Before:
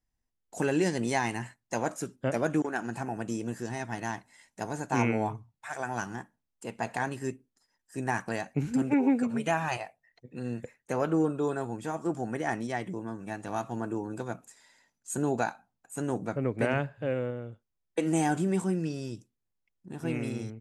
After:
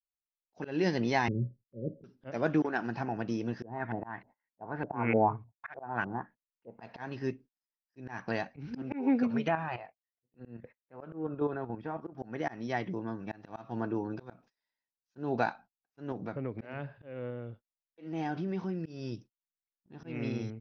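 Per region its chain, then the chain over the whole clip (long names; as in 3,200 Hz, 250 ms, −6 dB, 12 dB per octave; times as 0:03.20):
0:01.28–0:02.04: Chebyshev low-pass with heavy ripple 570 Hz, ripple 6 dB + low-shelf EQ 430 Hz +10 dB
0:03.62–0:06.80: auto-filter low-pass saw up 3.3 Hz 470–2,600 Hz + high-frequency loss of the air 86 metres
0:09.48–0:12.18: low-pass filter 2,200 Hz + output level in coarse steps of 9 dB
0:16.12–0:18.86: low-pass filter 6,400 Hz + downward compressor 2 to 1, threshold −36 dBFS
whole clip: Butterworth low-pass 5,700 Hz 96 dB per octave; noise gate −50 dBFS, range −29 dB; volume swells 231 ms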